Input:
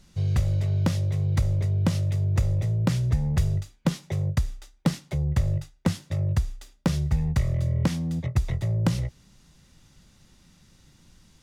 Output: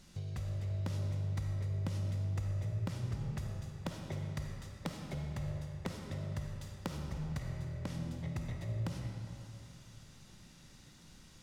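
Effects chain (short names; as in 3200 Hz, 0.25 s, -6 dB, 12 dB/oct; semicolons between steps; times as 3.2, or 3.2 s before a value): low shelf 93 Hz -6 dB; compressor 3:1, threshold -41 dBFS, peak gain reduction 16.5 dB; on a send: reverb RT60 3.0 s, pre-delay 10 ms, DRR 1.5 dB; on the sum: gain -1.5 dB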